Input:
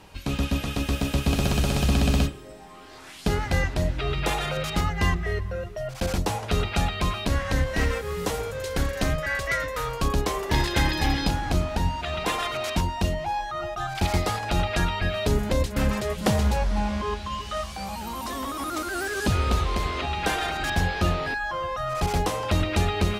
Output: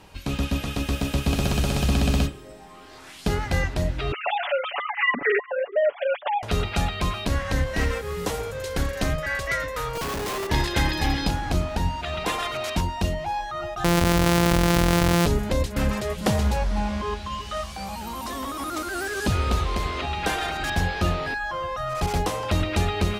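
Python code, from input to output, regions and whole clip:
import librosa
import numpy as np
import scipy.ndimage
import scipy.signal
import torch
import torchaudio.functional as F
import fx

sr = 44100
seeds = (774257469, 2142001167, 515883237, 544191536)

y = fx.chain(x, sr, fx.sine_speech(),
    fx.comb(ms=7.0, depth=0.97), at=(4.12, 6.43))
y = fx.chain(y, sr, fx.highpass(hz=180.0, slope=6),
    fx.schmitt(flips_db=-37.0), at=(9.95, 10.47))
y = fx.chain(y, sr, fx.sample_sort(block=256),
    fx.env_flatten(amount_pct=100), at=(13.84, 15.26))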